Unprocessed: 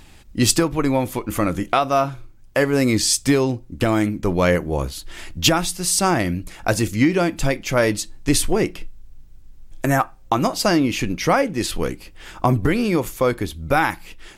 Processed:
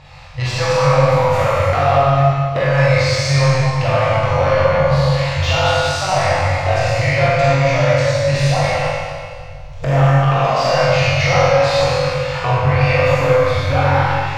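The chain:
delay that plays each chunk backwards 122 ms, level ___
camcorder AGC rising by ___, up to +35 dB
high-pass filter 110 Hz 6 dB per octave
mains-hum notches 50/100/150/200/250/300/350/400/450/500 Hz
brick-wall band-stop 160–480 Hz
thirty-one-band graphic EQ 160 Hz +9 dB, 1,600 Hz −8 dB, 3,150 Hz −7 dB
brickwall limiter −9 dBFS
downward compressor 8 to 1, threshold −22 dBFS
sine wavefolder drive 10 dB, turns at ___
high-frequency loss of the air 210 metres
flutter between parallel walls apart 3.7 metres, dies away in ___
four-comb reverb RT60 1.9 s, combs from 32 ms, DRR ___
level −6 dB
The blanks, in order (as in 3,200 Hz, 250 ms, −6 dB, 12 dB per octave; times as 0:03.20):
−5 dB, 8 dB per second, −9.5 dBFS, 0.32 s, −6 dB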